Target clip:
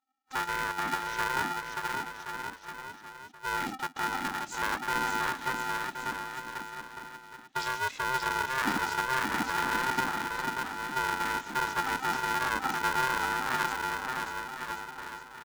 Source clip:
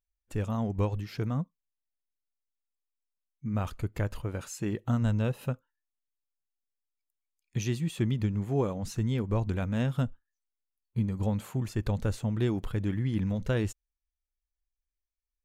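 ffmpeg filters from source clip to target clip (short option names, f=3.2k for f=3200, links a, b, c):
-filter_complex "[0:a]afftfilt=real='real(if(lt(b,960),b+48*(1-2*mod(floor(b/48),2)),b),0)':imag='imag(if(lt(b,960),b+48*(1-2*mod(floor(b/48),2)),b),0)':win_size=2048:overlap=0.75,equalizer=f=570:w=7.8:g=-12,acrossover=split=180[a][b];[a]adelay=50[c];[c][b]amix=inputs=2:normalize=0,alimiter=limit=-23.5dB:level=0:latency=1:release=23,asubboost=boost=10:cutoff=64,asplit=2[d][e];[e]aecho=0:1:580|1073|1492|1848|2151:0.631|0.398|0.251|0.158|0.1[f];[d][f]amix=inputs=2:normalize=0,aresample=16000,aresample=44100,aeval=exprs='val(0)*sgn(sin(2*PI*260*n/s))':c=same"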